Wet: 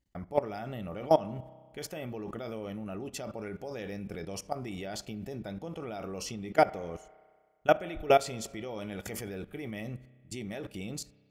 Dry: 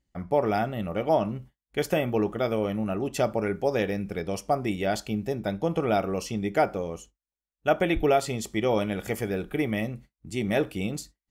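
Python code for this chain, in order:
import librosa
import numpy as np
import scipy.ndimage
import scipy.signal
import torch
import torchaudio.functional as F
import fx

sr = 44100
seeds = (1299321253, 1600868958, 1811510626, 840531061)

y = fx.dynamic_eq(x, sr, hz=5300.0, q=0.99, threshold_db=-48.0, ratio=4.0, max_db=4)
y = fx.level_steps(y, sr, step_db=20)
y = fx.rev_spring(y, sr, rt60_s=1.7, pass_ms=(31,), chirp_ms=65, drr_db=18.5)
y = y * 10.0 ** (1.5 / 20.0)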